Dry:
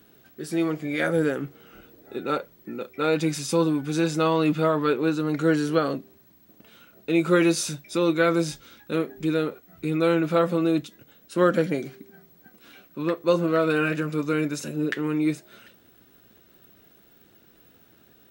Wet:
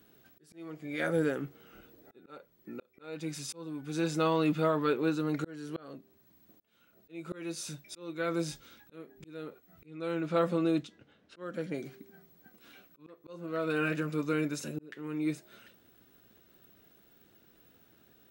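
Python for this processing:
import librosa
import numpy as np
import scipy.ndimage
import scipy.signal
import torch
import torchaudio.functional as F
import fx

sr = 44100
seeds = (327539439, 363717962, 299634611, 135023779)

y = fx.env_lowpass(x, sr, base_hz=3000.0, full_db=-16.0, at=(9.86, 11.74))
y = fx.auto_swell(y, sr, attack_ms=608.0)
y = y * 10.0 ** (-6.0 / 20.0)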